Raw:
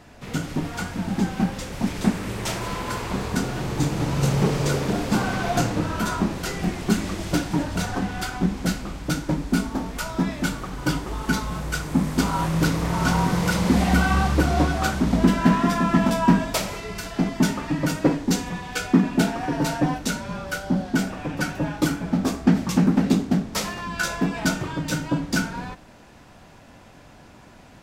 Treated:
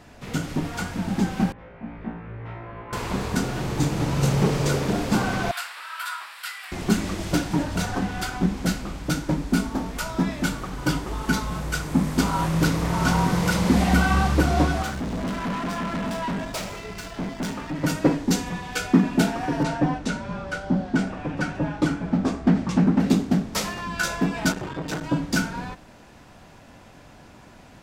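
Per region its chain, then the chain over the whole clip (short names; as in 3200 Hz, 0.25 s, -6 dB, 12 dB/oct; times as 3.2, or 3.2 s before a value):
1.52–2.93 LPF 2200 Hz 24 dB/oct + resonator 57 Hz, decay 0.53 s, mix 100%
5.51–6.72 HPF 1200 Hz 24 dB/oct + bell 6300 Hz -14 dB 0.37 oct
14.82–17.84 median filter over 3 samples + tube stage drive 25 dB, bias 0.55
19.63–23 LPF 10000 Hz 24 dB/oct + high shelf 4200 Hz -11 dB + hard clip -11 dBFS
24.52–25.04 high shelf 5000 Hz -5.5 dB + doubler 36 ms -11 dB + core saturation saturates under 900 Hz
whole clip: dry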